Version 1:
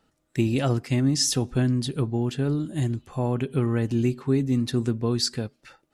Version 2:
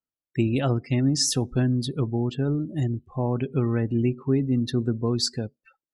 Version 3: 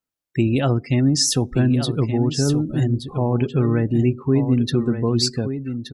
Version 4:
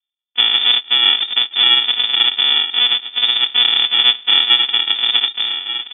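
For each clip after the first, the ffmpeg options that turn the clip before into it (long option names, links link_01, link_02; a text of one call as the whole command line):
ffmpeg -i in.wav -af "afftdn=noise_reduction=32:noise_floor=-39" out.wav
ffmpeg -i in.wav -filter_complex "[0:a]asplit=2[link_01][link_02];[link_02]alimiter=limit=-20dB:level=0:latency=1:release=175,volume=-2dB[link_03];[link_01][link_03]amix=inputs=2:normalize=0,aecho=1:1:1174:0.355,volume=1.5dB" out.wav
ffmpeg -i in.wav -af "aresample=11025,acrusher=samples=22:mix=1:aa=0.000001,aresample=44100,lowpass=frequency=3100:width_type=q:width=0.5098,lowpass=frequency=3100:width_type=q:width=0.6013,lowpass=frequency=3100:width_type=q:width=0.9,lowpass=frequency=3100:width_type=q:width=2.563,afreqshift=-3600,volume=4dB" out.wav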